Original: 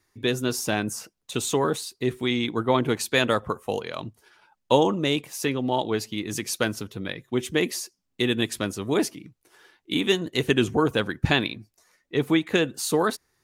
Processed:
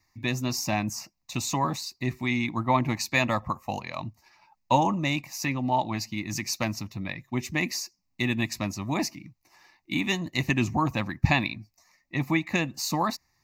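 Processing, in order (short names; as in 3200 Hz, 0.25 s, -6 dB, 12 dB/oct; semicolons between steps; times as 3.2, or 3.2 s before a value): fixed phaser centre 2200 Hz, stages 8; gain +2.5 dB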